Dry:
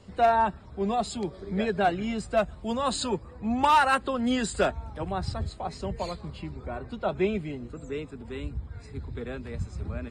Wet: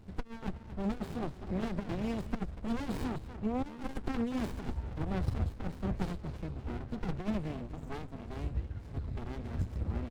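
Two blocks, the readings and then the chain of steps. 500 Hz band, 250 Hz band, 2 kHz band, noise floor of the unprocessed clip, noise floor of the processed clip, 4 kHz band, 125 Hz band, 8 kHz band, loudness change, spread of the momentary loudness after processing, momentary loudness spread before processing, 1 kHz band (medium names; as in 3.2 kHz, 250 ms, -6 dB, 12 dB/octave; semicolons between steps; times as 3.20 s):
-13.0 dB, -4.5 dB, -15.0 dB, -47 dBFS, -48 dBFS, -15.0 dB, -1.0 dB, -18.0 dB, -9.0 dB, 7 LU, 15 LU, -18.0 dB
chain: compressor with a negative ratio -27 dBFS, ratio -0.5; speakerphone echo 240 ms, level -11 dB; sliding maximum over 65 samples; trim -2.5 dB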